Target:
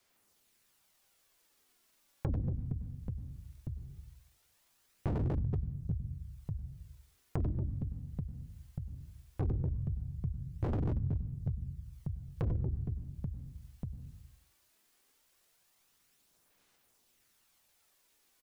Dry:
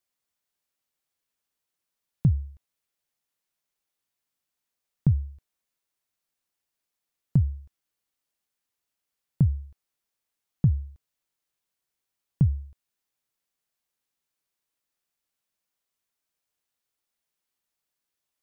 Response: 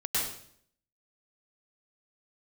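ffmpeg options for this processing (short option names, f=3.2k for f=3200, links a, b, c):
-filter_complex "[0:a]equalizer=f=360:t=o:w=0.26:g=3.5,aecho=1:1:90|234|464.4|833|1423:0.631|0.398|0.251|0.158|0.1,asplit=2[a][b];[1:a]atrim=start_sample=2205[c];[b][c]afir=irnorm=-1:irlink=0,volume=-16.5dB[d];[a][d]amix=inputs=2:normalize=0,asoftclip=type=tanh:threshold=-23.5dB,aphaser=in_gain=1:out_gain=1:delay=4:decay=0.45:speed=0.18:type=sinusoidal,adynamicequalizer=threshold=0.00794:dfrequency=220:dqfactor=2.2:tfrequency=220:tqfactor=2.2:attack=5:release=100:ratio=0.375:range=2:mode=boostabove:tftype=bell,asplit=2[e][f];[f]asetrate=29433,aresample=44100,atempo=1.49831,volume=-2dB[g];[e][g]amix=inputs=2:normalize=0,acontrast=65,aeval=exprs='0.237*(abs(mod(val(0)/0.237+3,4)-2)-1)':c=same,acompressor=threshold=-42dB:ratio=2"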